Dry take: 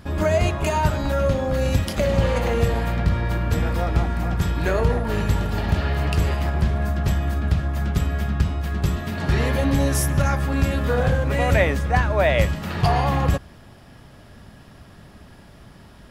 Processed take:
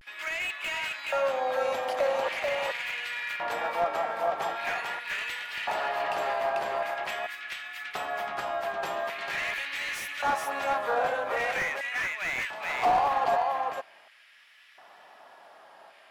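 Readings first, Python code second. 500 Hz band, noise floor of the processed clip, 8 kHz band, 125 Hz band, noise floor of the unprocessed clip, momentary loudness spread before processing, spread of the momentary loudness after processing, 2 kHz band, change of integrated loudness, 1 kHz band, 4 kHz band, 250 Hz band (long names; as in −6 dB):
−6.5 dB, −56 dBFS, −10.5 dB, −36.0 dB, −46 dBFS, 4 LU, 6 LU, −1.0 dB, −7.5 dB, −0.5 dB, −3.0 dB, −23.0 dB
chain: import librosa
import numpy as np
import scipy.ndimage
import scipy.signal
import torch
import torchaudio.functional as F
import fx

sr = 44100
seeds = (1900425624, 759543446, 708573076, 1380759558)

p1 = fx.filter_lfo_highpass(x, sr, shape='square', hz=0.44, low_hz=750.0, high_hz=2200.0, q=2.4)
p2 = fx.bass_treble(p1, sr, bass_db=-3, treble_db=-8)
p3 = p2 + fx.echo_single(p2, sr, ms=432, db=-4.5, dry=0)
p4 = fx.vibrato(p3, sr, rate_hz=0.42, depth_cents=55.0)
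p5 = fx.rider(p4, sr, range_db=5, speed_s=0.5)
p6 = p4 + (p5 * librosa.db_to_amplitude(-2.0))
p7 = fx.slew_limit(p6, sr, full_power_hz=240.0)
y = p7 * librosa.db_to_amplitude(-9.0)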